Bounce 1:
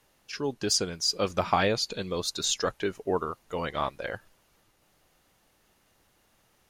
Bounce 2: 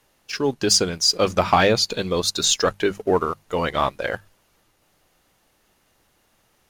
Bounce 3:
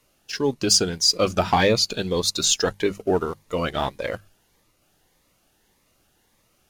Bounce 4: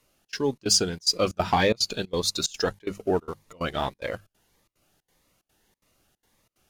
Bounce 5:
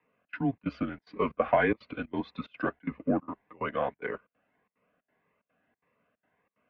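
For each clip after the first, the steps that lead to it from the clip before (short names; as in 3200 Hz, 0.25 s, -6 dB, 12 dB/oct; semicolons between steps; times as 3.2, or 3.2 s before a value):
notches 50/100/150/200 Hz; sample leveller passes 1; gain +5 dB
cascading phaser rising 1.7 Hz
step gate "xxx.xxx.x" 183 bpm -24 dB; gain -3 dB
notch comb 490 Hz; mistuned SSB -130 Hz 310–2500 Hz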